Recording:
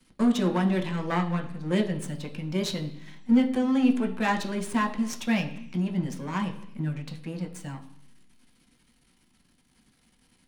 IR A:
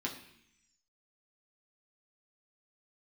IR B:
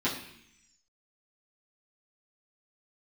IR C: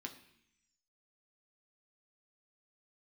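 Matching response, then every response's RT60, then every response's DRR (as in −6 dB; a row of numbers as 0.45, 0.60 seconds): C; 0.70, 0.70, 0.70 seconds; −2.0, −9.5, 2.5 decibels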